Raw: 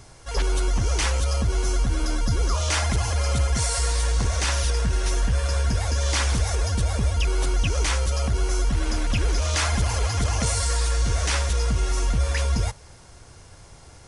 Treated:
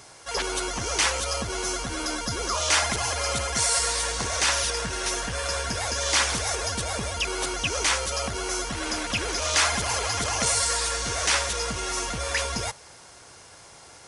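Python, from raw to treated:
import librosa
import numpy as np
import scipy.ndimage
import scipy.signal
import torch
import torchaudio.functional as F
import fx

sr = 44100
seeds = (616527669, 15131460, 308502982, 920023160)

y = fx.highpass(x, sr, hz=540.0, slope=6)
y = y * 10.0 ** (4.0 / 20.0)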